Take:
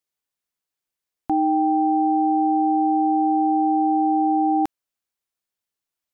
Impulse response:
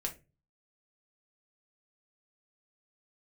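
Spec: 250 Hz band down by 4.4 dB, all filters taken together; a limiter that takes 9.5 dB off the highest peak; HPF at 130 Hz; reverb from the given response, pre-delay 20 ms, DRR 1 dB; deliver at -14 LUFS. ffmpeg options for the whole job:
-filter_complex "[0:a]highpass=130,equalizer=f=250:t=o:g=-6,alimiter=level_in=0.5dB:limit=-24dB:level=0:latency=1,volume=-0.5dB,asplit=2[a][b];[1:a]atrim=start_sample=2205,adelay=20[c];[b][c]afir=irnorm=-1:irlink=0,volume=-2dB[d];[a][d]amix=inputs=2:normalize=0,volume=18dB"

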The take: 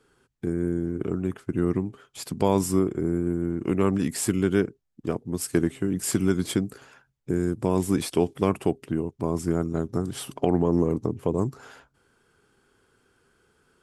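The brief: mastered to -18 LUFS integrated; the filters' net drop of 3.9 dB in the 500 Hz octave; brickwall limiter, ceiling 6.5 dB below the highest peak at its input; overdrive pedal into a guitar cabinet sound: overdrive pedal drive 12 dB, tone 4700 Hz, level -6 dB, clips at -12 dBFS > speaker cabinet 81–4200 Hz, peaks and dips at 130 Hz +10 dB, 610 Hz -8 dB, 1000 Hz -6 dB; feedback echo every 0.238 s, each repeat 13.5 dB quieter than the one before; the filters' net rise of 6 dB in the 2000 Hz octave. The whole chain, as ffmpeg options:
-filter_complex "[0:a]equalizer=f=500:t=o:g=-4.5,equalizer=f=2k:t=o:g=9,alimiter=limit=-13.5dB:level=0:latency=1,aecho=1:1:238|476:0.211|0.0444,asplit=2[a][b];[b]highpass=f=720:p=1,volume=12dB,asoftclip=type=tanh:threshold=-12dB[c];[a][c]amix=inputs=2:normalize=0,lowpass=f=4.7k:p=1,volume=-6dB,highpass=81,equalizer=f=130:t=q:w=4:g=10,equalizer=f=610:t=q:w=4:g=-8,equalizer=f=1k:t=q:w=4:g=-6,lowpass=f=4.2k:w=0.5412,lowpass=f=4.2k:w=1.3066,volume=10.5dB"

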